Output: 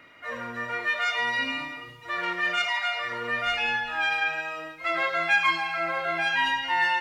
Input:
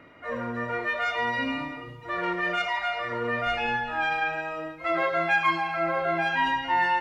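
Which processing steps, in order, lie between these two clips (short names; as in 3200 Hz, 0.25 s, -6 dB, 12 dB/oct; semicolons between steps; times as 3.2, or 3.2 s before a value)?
tilt shelf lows -8 dB, about 1300 Hz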